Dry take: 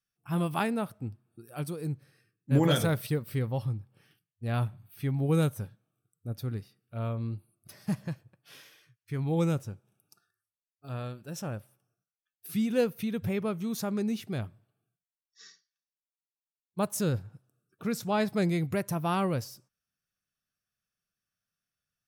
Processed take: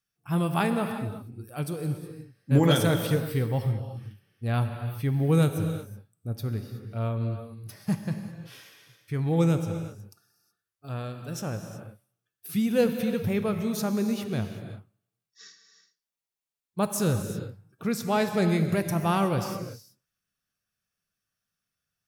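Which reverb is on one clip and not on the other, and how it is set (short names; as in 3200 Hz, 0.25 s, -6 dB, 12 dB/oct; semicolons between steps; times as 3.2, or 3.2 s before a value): non-linear reverb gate 0.4 s flat, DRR 6.5 dB; gain +3 dB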